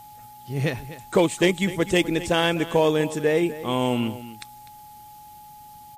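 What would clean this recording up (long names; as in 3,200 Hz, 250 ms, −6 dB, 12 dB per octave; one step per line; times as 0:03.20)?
clipped peaks rebuilt −9.5 dBFS
notch filter 840 Hz, Q 30
echo removal 250 ms −15 dB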